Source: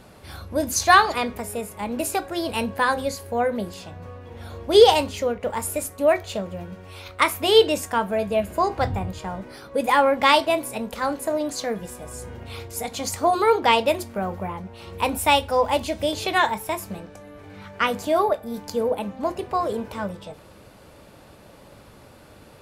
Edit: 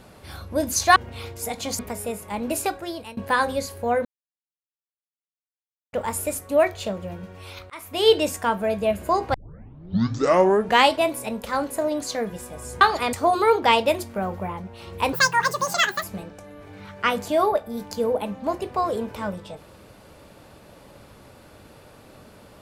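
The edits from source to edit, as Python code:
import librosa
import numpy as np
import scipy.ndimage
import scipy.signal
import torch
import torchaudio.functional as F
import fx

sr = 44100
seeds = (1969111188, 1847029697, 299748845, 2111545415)

y = fx.edit(x, sr, fx.swap(start_s=0.96, length_s=0.32, other_s=12.3, other_length_s=0.83),
    fx.fade_out_to(start_s=2.14, length_s=0.52, floor_db=-23.0),
    fx.silence(start_s=3.54, length_s=1.88),
    fx.fade_in_span(start_s=7.19, length_s=0.47),
    fx.tape_start(start_s=8.83, length_s=1.63),
    fx.speed_span(start_s=15.13, length_s=1.67, speed=1.85), tone=tone)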